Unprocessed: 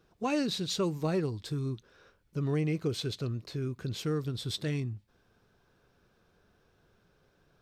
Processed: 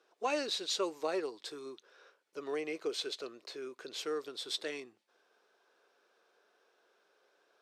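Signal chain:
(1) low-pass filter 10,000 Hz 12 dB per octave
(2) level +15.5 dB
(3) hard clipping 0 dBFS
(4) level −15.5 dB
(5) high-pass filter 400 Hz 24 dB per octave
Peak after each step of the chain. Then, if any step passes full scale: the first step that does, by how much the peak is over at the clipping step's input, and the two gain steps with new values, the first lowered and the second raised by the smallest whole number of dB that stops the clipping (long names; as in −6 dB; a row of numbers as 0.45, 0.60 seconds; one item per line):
−19.0, −3.5, −3.5, −19.0, −20.5 dBFS
no step passes full scale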